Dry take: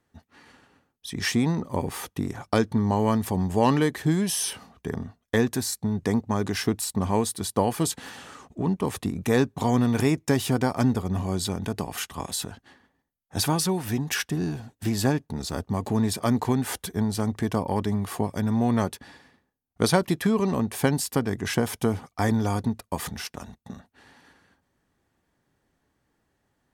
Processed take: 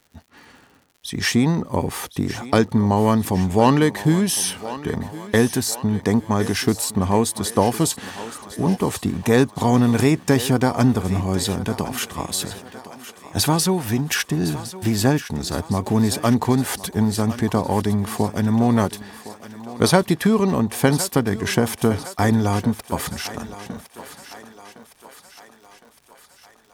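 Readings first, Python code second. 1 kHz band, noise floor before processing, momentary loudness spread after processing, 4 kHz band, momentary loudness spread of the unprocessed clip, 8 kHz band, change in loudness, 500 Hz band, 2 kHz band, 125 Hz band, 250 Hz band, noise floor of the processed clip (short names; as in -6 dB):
+6.0 dB, -75 dBFS, 15 LU, +6.0 dB, 10 LU, +6.0 dB, +5.5 dB, +5.5 dB, +6.0 dB, +5.5 dB, +5.5 dB, -53 dBFS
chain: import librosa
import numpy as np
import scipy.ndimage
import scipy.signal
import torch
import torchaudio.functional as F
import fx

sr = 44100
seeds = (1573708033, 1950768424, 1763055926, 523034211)

y = fx.dmg_crackle(x, sr, seeds[0], per_s=130.0, level_db=-47.0)
y = fx.echo_thinned(y, sr, ms=1061, feedback_pct=58, hz=360.0, wet_db=-13.0)
y = y * librosa.db_to_amplitude(5.5)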